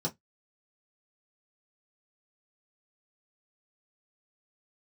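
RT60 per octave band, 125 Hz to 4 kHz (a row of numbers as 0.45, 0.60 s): 0.20, 0.15, 0.10, 0.10, 0.15, 0.10 s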